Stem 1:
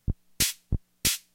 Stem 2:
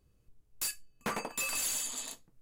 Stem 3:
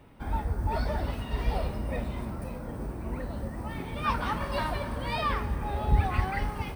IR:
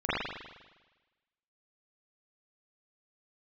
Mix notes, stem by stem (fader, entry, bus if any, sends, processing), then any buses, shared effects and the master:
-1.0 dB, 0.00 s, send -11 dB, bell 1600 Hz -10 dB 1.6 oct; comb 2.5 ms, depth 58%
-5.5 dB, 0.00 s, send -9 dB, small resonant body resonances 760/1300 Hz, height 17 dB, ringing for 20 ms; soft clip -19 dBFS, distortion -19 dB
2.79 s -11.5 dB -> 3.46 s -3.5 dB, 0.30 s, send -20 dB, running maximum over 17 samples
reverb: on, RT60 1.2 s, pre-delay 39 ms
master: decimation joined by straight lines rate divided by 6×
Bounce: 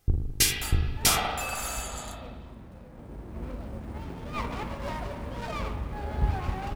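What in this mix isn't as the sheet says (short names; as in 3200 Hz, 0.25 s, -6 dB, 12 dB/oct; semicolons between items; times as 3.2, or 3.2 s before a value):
stem 1: missing bell 1600 Hz -10 dB 1.6 oct; master: missing decimation joined by straight lines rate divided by 6×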